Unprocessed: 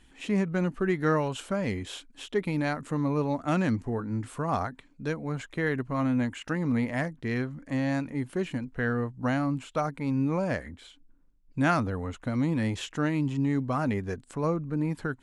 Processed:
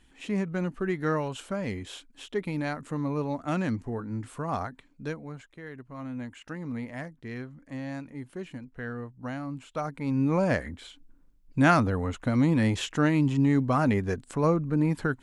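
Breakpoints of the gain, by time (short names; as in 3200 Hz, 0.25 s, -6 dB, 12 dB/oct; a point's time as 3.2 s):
5.07 s -2.5 dB
5.6 s -15 dB
6.38 s -8 dB
9.44 s -8 dB
10.43 s +4 dB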